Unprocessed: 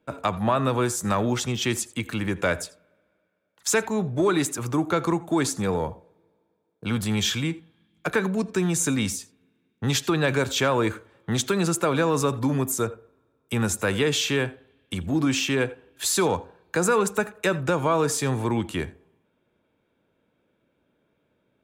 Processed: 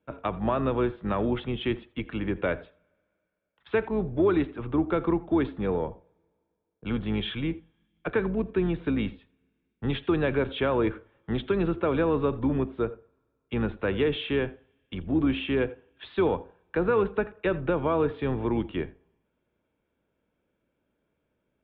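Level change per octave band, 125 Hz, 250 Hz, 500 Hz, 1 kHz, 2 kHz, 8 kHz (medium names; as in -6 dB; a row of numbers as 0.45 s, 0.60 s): -4.5 dB, -1.5 dB, -1.0 dB, -5.5 dB, -6.5 dB, under -40 dB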